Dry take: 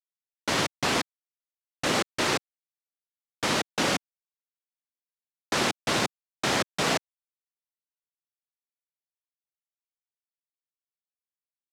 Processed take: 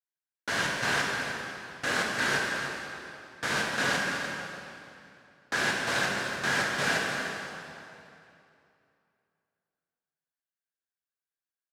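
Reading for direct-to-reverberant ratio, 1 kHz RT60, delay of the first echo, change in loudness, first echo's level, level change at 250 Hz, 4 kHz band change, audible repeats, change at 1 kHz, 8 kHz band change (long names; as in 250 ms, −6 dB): −3.5 dB, 2.7 s, 300 ms, −2.0 dB, −10.5 dB, −5.0 dB, −3.0 dB, 1, −2.0 dB, −3.5 dB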